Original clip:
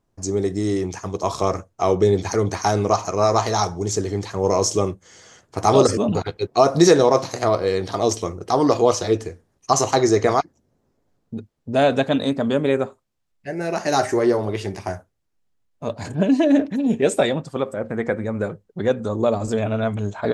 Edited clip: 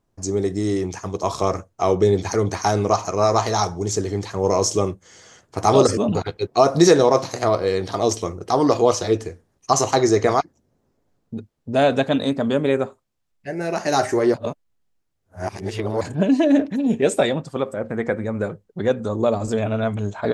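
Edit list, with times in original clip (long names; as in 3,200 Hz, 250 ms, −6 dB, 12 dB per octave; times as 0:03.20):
0:14.34–0:16.01: reverse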